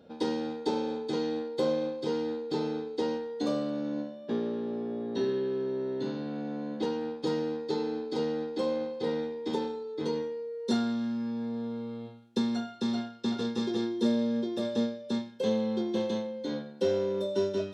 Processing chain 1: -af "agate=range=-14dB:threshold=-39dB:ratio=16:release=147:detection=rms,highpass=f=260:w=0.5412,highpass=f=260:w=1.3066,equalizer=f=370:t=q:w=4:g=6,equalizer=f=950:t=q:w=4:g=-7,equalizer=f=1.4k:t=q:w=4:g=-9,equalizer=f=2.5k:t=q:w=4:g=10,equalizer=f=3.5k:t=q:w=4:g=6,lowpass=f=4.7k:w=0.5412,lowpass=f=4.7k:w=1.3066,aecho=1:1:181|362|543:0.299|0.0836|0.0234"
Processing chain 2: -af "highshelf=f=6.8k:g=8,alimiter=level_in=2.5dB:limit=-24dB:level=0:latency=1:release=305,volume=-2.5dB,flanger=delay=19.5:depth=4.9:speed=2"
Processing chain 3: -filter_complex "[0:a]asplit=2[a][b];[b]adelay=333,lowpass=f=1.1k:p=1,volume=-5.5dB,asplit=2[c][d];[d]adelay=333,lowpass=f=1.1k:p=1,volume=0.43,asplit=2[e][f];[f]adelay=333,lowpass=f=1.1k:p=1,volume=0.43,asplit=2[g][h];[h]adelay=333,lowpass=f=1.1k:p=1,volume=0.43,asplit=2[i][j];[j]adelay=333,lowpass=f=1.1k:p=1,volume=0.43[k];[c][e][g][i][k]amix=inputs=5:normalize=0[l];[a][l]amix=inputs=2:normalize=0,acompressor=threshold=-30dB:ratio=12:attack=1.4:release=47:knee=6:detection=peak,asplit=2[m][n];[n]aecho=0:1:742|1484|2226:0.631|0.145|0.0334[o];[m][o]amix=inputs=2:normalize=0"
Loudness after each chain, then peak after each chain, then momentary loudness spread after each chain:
-30.5, -39.5, -34.5 LUFS; -14.0, -26.5, -22.5 dBFS; 11, 4, 3 LU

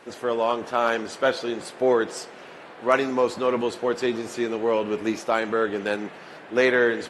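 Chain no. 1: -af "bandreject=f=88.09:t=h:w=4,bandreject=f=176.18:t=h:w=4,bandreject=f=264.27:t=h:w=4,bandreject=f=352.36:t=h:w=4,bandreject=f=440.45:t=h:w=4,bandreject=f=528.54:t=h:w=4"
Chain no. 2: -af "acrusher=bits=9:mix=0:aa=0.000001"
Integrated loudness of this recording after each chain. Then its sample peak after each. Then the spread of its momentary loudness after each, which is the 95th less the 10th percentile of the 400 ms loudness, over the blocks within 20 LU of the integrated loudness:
-24.5, -24.5 LUFS; -4.0, -4.5 dBFS; 10, 10 LU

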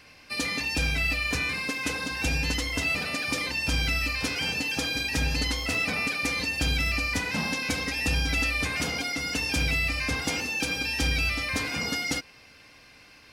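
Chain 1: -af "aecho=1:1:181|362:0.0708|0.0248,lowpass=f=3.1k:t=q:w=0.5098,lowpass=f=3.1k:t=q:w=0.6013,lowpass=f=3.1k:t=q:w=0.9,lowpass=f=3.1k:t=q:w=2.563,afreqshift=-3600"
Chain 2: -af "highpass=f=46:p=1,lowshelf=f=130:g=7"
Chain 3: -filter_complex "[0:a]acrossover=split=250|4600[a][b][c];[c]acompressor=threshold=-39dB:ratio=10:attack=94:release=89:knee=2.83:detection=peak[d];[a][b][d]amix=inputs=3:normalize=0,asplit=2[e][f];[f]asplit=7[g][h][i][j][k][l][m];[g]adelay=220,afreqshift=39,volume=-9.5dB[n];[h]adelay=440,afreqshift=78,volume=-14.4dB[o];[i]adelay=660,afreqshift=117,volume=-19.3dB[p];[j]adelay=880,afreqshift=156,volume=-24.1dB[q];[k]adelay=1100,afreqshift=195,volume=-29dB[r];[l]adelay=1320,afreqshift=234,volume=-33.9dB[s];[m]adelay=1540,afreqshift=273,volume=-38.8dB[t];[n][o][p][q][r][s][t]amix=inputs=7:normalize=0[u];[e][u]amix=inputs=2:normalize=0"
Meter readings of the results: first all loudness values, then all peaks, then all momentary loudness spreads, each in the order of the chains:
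-26.5, -26.0, -26.0 LUFS; -15.0, -13.5, -13.0 dBFS; 6, 4, 3 LU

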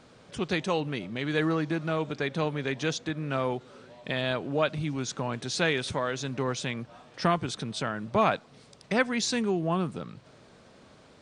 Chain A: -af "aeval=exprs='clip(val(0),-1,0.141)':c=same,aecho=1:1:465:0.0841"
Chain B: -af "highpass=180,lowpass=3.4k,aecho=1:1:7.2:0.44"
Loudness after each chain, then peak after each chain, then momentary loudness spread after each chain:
-30.0, -30.0 LUFS; -13.0, -8.5 dBFS; 11, 9 LU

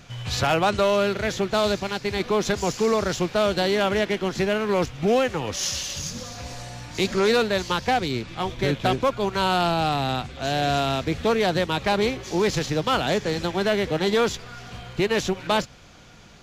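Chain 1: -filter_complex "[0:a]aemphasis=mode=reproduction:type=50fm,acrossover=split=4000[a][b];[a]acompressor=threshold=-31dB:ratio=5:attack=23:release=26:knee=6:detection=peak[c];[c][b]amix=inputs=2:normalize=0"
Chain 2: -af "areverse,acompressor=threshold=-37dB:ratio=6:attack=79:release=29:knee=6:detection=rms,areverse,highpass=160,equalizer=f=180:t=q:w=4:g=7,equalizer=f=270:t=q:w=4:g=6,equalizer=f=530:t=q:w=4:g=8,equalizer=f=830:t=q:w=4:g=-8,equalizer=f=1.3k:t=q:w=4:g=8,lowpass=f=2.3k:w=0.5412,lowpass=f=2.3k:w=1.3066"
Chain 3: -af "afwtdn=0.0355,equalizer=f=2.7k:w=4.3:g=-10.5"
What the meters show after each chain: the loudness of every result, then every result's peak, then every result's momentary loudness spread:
-30.0, -32.0, -24.5 LUFS; -16.0, -16.5, -11.5 dBFS; 6, 9, 10 LU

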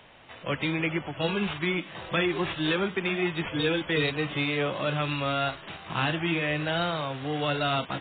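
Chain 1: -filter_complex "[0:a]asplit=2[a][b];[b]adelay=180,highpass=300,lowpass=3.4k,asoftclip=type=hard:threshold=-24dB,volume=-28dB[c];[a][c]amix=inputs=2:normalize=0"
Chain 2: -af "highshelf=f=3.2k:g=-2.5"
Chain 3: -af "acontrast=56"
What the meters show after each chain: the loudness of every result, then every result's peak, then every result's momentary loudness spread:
-28.0, -28.5, -22.0 LUFS; -14.5, -15.0, -9.0 dBFS; 5, 5, 5 LU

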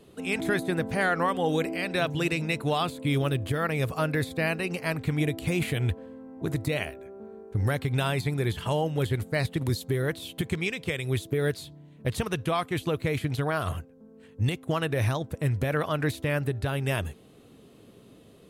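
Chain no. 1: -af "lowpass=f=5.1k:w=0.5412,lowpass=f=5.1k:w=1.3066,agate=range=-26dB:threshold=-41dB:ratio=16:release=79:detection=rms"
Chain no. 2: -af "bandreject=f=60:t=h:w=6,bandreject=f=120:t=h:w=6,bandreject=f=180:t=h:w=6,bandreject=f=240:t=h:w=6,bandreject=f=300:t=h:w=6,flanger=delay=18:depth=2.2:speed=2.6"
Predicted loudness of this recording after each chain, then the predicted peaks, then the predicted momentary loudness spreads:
-28.5, -31.5 LUFS; -14.5, -16.0 dBFS; 5, 6 LU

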